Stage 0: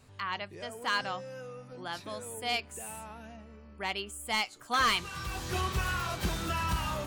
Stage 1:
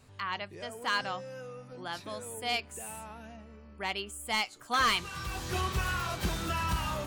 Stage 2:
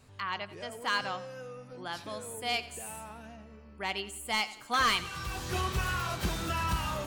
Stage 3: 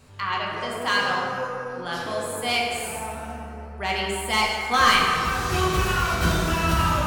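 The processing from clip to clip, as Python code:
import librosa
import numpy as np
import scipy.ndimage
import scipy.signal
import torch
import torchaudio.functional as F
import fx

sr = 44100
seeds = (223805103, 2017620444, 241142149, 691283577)

y1 = x
y2 = fx.echo_feedback(y1, sr, ms=89, feedback_pct=44, wet_db=-16)
y3 = fx.rev_plate(y2, sr, seeds[0], rt60_s=2.8, hf_ratio=0.4, predelay_ms=0, drr_db=-3.0)
y3 = y3 * 10.0 ** (5.5 / 20.0)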